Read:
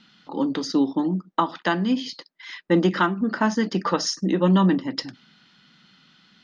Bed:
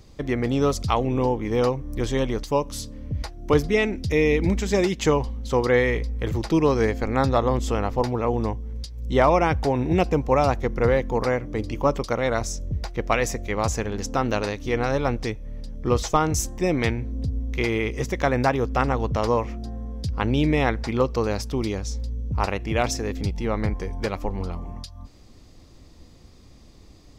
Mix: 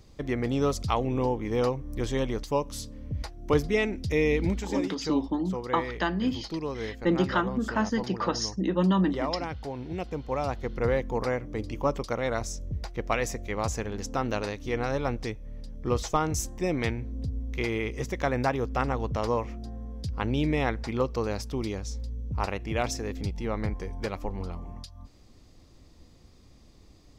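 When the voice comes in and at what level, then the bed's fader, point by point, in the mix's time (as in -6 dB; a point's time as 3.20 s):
4.35 s, -5.5 dB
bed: 4.46 s -4.5 dB
4.86 s -13.5 dB
10.00 s -13.5 dB
10.93 s -5.5 dB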